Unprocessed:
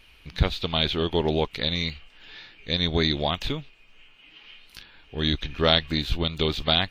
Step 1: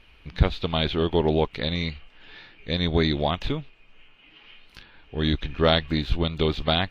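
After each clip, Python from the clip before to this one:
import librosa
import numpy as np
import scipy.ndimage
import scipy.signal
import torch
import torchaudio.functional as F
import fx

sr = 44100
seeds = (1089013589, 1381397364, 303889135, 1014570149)

y = fx.lowpass(x, sr, hz=1900.0, slope=6)
y = y * librosa.db_to_amplitude(2.5)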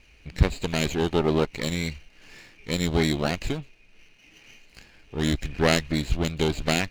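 y = fx.lower_of_two(x, sr, delay_ms=0.44)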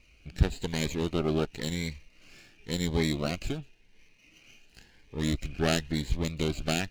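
y = fx.notch_cascade(x, sr, direction='rising', hz=0.94)
y = y * librosa.db_to_amplitude(-4.0)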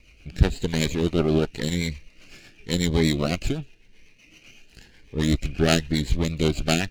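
y = fx.rotary(x, sr, hz=8.0)
y = y * librosa.db_to_amplitude(8.5)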